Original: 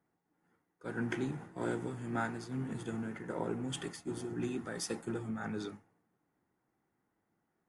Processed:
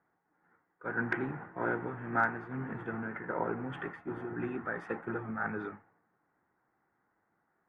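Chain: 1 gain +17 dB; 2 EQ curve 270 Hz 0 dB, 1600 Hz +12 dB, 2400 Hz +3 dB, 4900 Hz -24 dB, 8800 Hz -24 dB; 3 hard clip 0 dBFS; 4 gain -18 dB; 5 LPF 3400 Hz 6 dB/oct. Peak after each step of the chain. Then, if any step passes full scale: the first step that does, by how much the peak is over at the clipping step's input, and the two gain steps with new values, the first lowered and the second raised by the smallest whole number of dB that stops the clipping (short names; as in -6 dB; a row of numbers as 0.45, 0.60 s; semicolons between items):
-5.0, +3.5, 0.0, -18.0, -18.0 dBFS; step 2, 3.5 dB; step 1 +13 dB, step 4 -14 dB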